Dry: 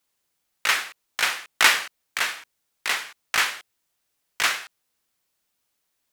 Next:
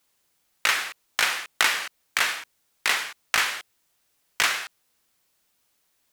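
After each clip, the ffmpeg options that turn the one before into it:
-af "acompressor=threshold=-24dB:ratio=6,volume=5.5dB"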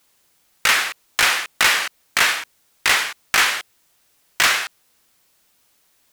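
-af "asoftclip=type=hard:threshold=-18.5dB,volume=8.5dB"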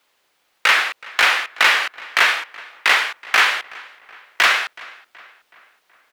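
-filter_complex "[0:a]acrossover=split=330 4100:gain=0.2 1 0.224[a][b][c];[a][b][c]amix=inputs=3:normalize=0,asplit=2[d][e];[e]adelay=374,lowpass=f=3.3k:p=1,volume=-21dB,asplit=2[f][g];[g]adelay=374,lowpass=f=3.3k:p=1,volume=0.54,asplit=2[h][i];[i]adelay=374,lowpass=f=3.3k:p=1,volume=0.54,asplit=2[j][k];[k]adelay=374,lowpass=f=3.3k:p=1,volume=0.54[l];[d][f][h][j][l]amix=inputs=5:normalize=0,volume=3dB"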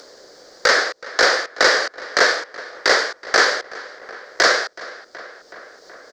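-filter_complex "[0:a]firequalizer=gain_entry='entry(140,0);entry(500,12);entry(880,-7);entry(1700,-2);entry(2600,-21);entry(4700,6);entry(6900,-1);entry(10000,-20)':delay=0.05:min_phase=1,asplit=2[a][b];[b]acompressor=mode=upward:threshold=-23dB:ratio=2.5,volume=-2dB[c];[a][c]amix=inputs=2:normalize=0,volume=-1dB"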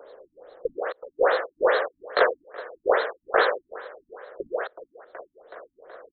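-af "equalizer=f=125:t=o:w=1:g=-8,equalizer=f=250:t=o:w=1:g=-8,equalizer=f=500:t=o:w=1:g=7,equalizer=f=1k:t=o:w=1:g=3,equalizer=f=2k:t=o:w=1:g=-7,equalizer=f=8k:t=o:w=1:g=10,afftfilt=real='re*lt(b*sr/1024,280*pow(4300/280,0.5+0.5*sin(2*PI*2.4*pts/sr)))':imag='im*lt(b*sr/1024,280*pow(4300/280,0.5+0.5*sin(2*PI*2.4*pts/sr)))':win_size=1024:overlap=0.75,volume=-4.5dB"

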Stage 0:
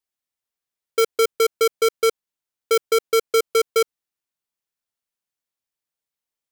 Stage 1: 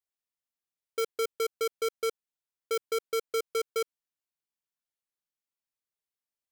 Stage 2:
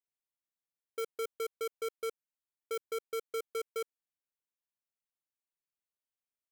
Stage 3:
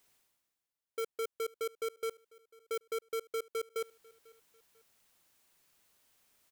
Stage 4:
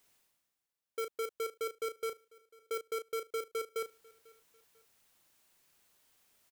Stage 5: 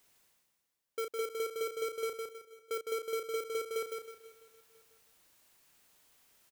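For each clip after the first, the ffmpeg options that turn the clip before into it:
-af "alimiter=limit=-19dB:level=0:latency=1,volume=-8dB"
-af "equalizer=f=4.8k:t=o:w=0.77:g=-5.5,volume=-6.5dB"
-af "areverse,acompressor=mode=upward:threshold=-51dB:ratio=2.5,areverse,aecho=1:1:495|990:0.0631|0.0227"
-filter_complex "[0:a]asplit=2[a][b];[b]adelay=34,volume=-9dB[c];[a][c]amix=inputs=2:normalize=0"
-filter_complex "[0:a]asoftclip=type=tanh:threshold=-32dB,asplit=2[a][b];[b]aecho=0:1:159|318|477|636:0.596|0.179|0.0536|0.0161[c];[a][c]amix=inputs=2:normalize=0,volume=2dB"

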